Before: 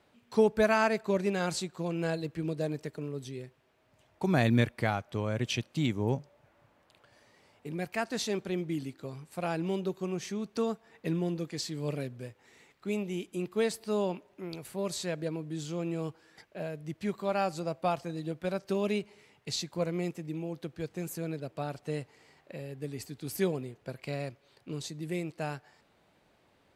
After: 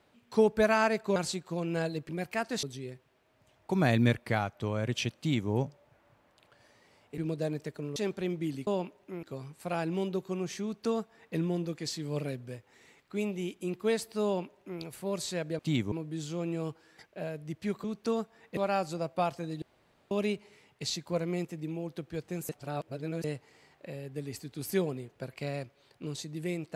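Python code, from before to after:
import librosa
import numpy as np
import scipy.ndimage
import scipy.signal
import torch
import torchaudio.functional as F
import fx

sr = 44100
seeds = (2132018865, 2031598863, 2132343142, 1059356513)

y = fx.edit(x, sr, fx.cut(start_s=1.16, length_s=0.28),
    fx.swap(start_s=2.37, length_s=0.78, other_s=7.7, other_length_s=0.54),
    fx.duplicate(start_s=5.69, length_s=0.33, to_s=15.31),
    fx.duplicate(start_s=10.35, length_s=0.73, to_s=17.23),
    fx.duplicate(start_s=13.97, length_s=0.56, to_s=8.95),
    fx.room_tone_fill(start_s=18.28, length_s=0.49),
    fx.reverse_span(start_s=21.15, length_s=0.75), tone=tone)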